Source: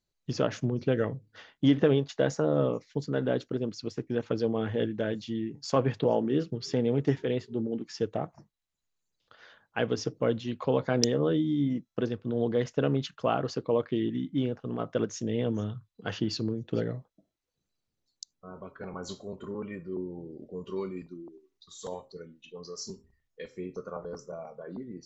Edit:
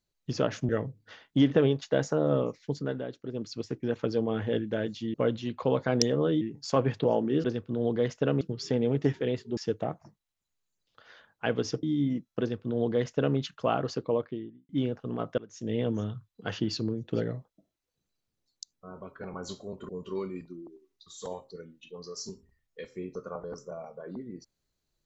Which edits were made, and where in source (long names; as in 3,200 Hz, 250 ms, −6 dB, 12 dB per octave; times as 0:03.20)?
0:00.69–0:00.96: remove
0:03.05–0:03.76: duck −9.5 dB, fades 0.27 s
0:07.60–0:07.90: remove
0:10.16–0:11.43: move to 0:05.41
0:12.00–0:12.97: duplicate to 0:06.44
0:13.57–0:14.29: fade out and dull
0:14.98–0:15.31: fade in quadratic, from −19.5 dB
0:19.49–0:20.50: remove